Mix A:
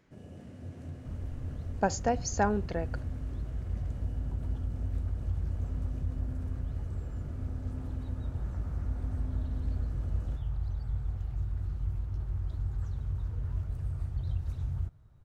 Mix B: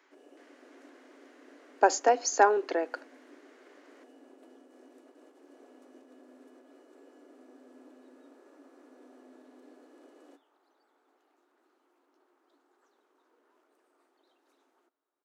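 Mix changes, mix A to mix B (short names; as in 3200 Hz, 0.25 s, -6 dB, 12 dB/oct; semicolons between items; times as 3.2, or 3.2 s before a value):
speech +8.0 dB; second sound -11.0 dB; master: add rippled Chebyshev high-pass 270 Hz, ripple 3 dB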